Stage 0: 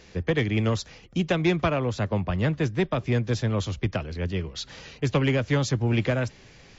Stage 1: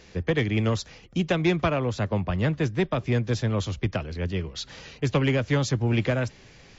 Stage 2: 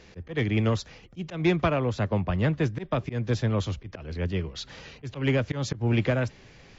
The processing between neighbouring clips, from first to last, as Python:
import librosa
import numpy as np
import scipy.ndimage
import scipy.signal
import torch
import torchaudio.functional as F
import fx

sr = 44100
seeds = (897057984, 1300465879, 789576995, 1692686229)

y1 = x
y2 = fx.auto_swell(y1, sr, attack_ms=145.0)
y2 = fx.high_shelf(y2, sr, hz=5800.0, db=-8.0)